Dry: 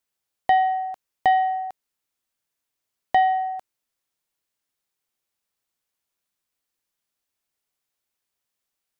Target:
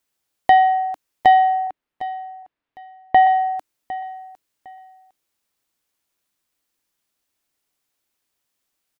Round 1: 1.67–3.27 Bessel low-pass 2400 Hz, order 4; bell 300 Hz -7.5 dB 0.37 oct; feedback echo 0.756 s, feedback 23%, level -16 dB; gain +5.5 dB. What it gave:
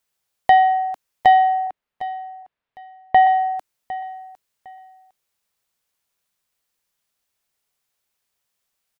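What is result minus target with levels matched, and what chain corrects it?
250 Hz band -5.0 dB
1.67–3.27 Bessel low-pass 2400 Hz, order 4; bell 300 Hz +4.5 dB 0.37 oct; feedback echo 0.756 s, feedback 23%, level -16 dB; gain +5.5 dB

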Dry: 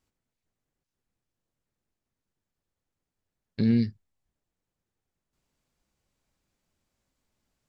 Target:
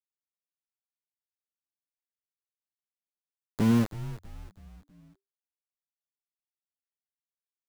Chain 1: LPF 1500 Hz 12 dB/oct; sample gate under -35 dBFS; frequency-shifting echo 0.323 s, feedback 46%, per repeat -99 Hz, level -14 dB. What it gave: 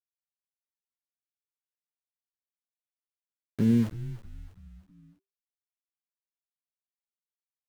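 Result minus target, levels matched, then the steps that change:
sample gate: distortion -11 dB
change: sample gate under -27 dBFS

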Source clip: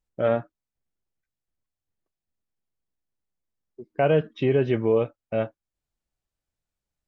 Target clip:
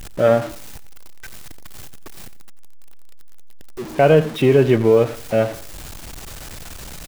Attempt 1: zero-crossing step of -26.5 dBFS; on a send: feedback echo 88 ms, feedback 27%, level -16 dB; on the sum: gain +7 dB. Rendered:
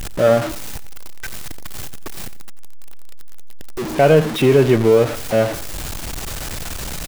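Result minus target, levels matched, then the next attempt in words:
zero-crossing step: distortion +7 dB
zero-crossing step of -34 dBFS; on a send: feedback echo 88 ms, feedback 27%, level -16 dB; on the sum: gain +7 dB

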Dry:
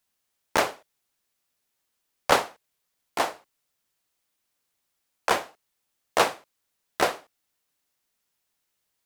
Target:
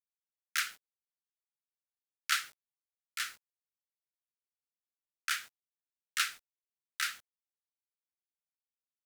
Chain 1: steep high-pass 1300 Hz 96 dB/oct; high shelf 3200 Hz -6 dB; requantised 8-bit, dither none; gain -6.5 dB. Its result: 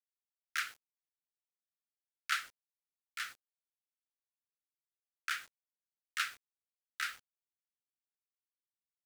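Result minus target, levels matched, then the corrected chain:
8000 Hz band -4.5 dB
steep high-pass 1300 Hz 96 dB/oct; high shelf 3200 Hz +4 dB; requantised 8-bit, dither none; gain -6.5 dB

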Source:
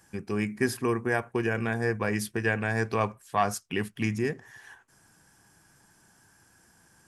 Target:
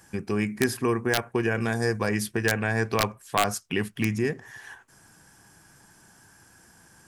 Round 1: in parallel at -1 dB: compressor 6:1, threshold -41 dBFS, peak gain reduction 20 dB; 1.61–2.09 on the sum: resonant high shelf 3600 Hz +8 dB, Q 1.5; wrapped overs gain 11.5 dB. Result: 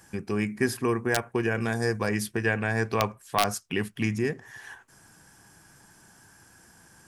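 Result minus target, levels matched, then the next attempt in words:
compressor: peak gain reduction +6.5 dB
in parallel at -1 dB: compressor 6:1, threshold -33 dBFS, peak gain reduction 13.5 dB; 1.61–2.09 on the sum: resonant high shelf 3600 Hz +8 dB, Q 1.5; wrapped overs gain 11.5 dB

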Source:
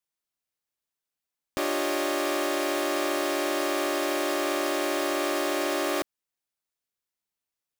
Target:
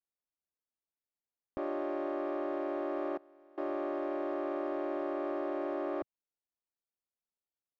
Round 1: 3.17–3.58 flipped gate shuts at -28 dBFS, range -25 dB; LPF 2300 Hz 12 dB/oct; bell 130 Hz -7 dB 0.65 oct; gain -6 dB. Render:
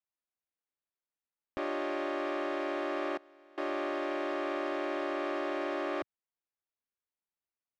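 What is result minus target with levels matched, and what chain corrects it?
2000 Hz band +8.5 dB
3.17–3.58 flipped gate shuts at -28 dBFS, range -25 dB; LPF 940 Hz 12 dB/oct; bell 130 Hz -7 dB 0.65 oct; gain -6 dB

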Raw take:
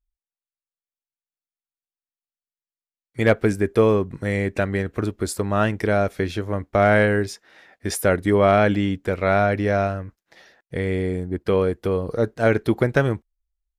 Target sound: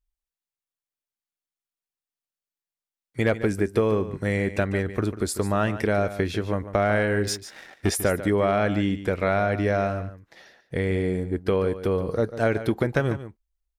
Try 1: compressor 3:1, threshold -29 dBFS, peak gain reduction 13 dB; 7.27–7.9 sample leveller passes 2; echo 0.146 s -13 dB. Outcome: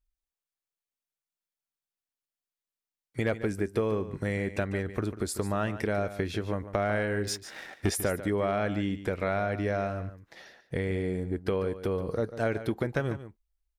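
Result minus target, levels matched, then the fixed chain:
compressor: peak gain reduction +6.5 dB
compressor 3:1, threshold -19.5 dBFS, peak gain reduction 7 dB; 7.27–7.9 sample leveller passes 2; echo 0.146 s -13 dB

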